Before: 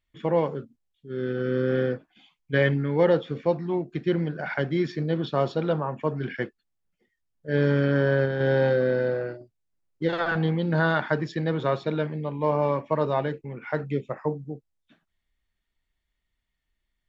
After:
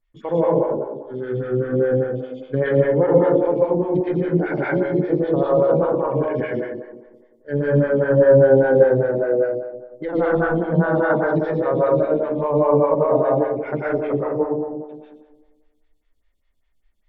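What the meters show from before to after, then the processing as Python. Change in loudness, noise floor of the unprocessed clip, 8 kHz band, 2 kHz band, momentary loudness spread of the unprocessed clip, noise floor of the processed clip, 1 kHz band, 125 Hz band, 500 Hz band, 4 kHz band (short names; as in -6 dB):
+7.0 dB, -80 dBFS, n/a, +1.5 dB, 10 LU, -64 dBFS, +5.5 dB, +3.0 dB, +9.0 dB, under -10 dB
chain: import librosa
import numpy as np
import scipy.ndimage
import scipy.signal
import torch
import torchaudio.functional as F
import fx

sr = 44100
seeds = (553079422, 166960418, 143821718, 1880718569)

y = fx.env_lowpass_down(x, sr, base_hz=1300.0, full_db=-22.5)
y = fx.low_shelf(y, sr, hz=61.0, db=11.0)
y = fx.echo_wet_bandpass(y, sr, ms=89, feedback_pct=64, hz=500.0, wet_db=-6.0)
y = fx.rev_plate(y, sr, seeds[0], rt60_s=0.8, hf_ratio=0.9, predelay_ms=110, drr_db=-4.5)
y = fx.stagger_phaser(y, sr, hz=5.0)
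y = y * 10.0 ** (2.5 / 20.0)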